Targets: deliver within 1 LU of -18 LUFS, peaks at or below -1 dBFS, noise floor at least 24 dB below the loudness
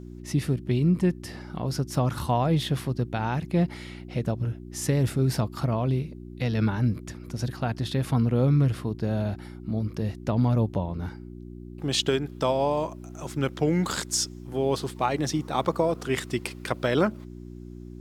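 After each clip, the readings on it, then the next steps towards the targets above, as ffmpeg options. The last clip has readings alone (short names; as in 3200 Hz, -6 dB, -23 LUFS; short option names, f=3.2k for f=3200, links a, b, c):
hum 60 Hz; harmonics up to 360 Hz; hum level -39 dBFS; loudness -27.0 LUFS; peak -9.5 dBFS; loudness target -18.0 LUFS
-> -af "bandreject=f=60:t=h:w=4,bandreject=f=120:t=h:w=4,bandreject=f=180:t=h:w=4,bandreject=f=240:t=h:w=4,bandreject=f=300:t=h:w=4,bandreject=f=360:t=h:w=4"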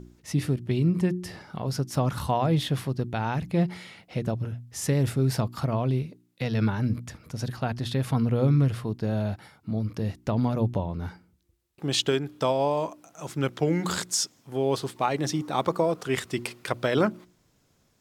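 hum none; loudness -27.5 LUFS; peak -9.5 dBFS; loudness target -18.0 LUFS
-> -af "volume=9.5dB,alimiter=limit=-1dB:level=0:latency=1"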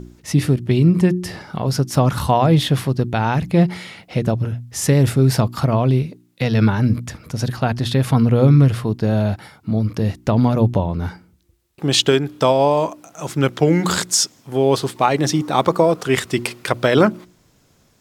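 loudness -18.0 LUFS; peak -1.0 dBFS; noise floor -57 dBFS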